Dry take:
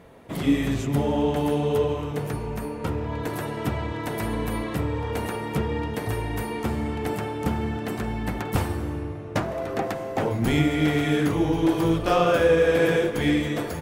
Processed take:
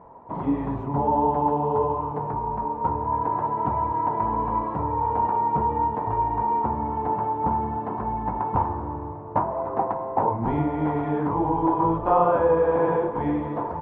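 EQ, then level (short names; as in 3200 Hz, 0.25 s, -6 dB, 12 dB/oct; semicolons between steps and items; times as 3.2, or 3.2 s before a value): synth low-pass 950 Hz, resonance Q 10; -4.0 dB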